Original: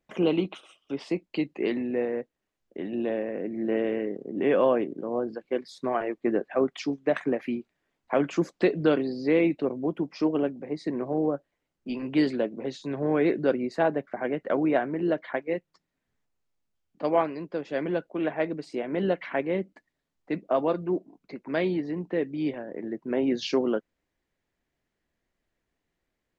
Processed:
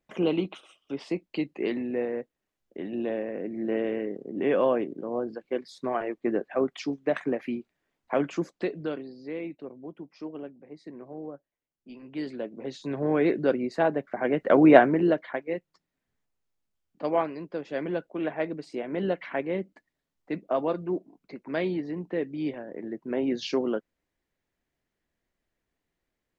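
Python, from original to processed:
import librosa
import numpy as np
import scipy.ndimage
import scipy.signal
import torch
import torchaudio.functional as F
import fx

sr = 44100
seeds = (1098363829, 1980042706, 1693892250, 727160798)

y = fx.gain(x, sr, db=fx.line((8.2, -1.5), (9.15, -13.0), (12.05, -13.0), (12.86, 0.0), (14.05, 0.0), (14.79, 10.0), (15.3, -2.0)))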